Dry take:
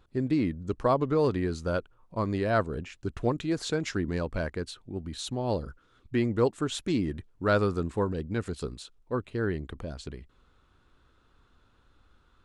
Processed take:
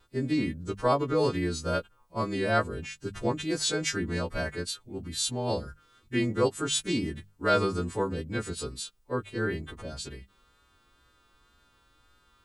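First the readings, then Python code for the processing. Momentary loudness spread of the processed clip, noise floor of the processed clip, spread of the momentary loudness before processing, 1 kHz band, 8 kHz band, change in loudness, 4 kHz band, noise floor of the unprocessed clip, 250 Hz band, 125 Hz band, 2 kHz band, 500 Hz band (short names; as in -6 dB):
11 LU, -65 dBFS, 13 LU, +1.5 dB, +10.0 dB, 0.0 dB, +7.0 dB, -65 dBFS, -1.5 dB, -2.0 dB, +2.5 dB, -0.5 dB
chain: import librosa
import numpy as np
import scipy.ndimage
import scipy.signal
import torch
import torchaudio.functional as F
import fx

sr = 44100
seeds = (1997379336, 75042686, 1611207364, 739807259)

y = fx.freq_snap(x, sr, grid_st=2)
y = fx.hum_notches(y, sr, base_hz=50, count=4)
y = fx.wow_flutter(y, sr, seeds[0], rate_hz=2.1, depth_cents=25.0)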